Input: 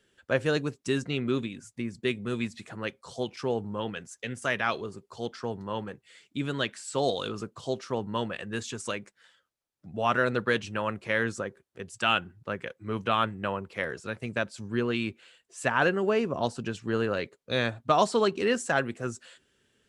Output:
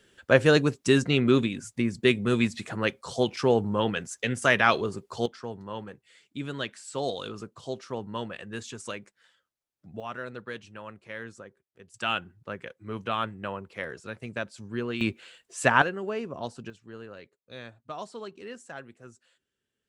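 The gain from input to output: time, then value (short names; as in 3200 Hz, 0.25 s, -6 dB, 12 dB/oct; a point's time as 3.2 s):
+7 dB
from 5.26 s -3.5 dB
from 10 s -12 dB
from 11.94 s -3.5 dB
from 15.01 s +5.5 dB
from 15.82 s -6.5 dB
from 16.7 s -15.5 dB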